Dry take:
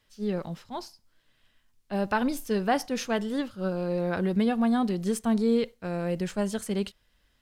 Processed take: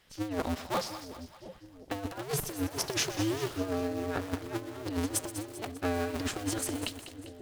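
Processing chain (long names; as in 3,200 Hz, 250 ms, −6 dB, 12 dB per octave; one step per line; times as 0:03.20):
sub-harmonics by changed cycles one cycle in 2, inverted
low-shelf EQ 140 Hz −5.5 dB
compressor whose output falls as the input rises −33 dBFS, ratio −0.5
echo with a time of its own for lows and highs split 610 Hz, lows 713 ms, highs 198 ms, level −12 dB
feedback echo at a low word length 125 ms, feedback 80%, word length 6 bits, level −13 dB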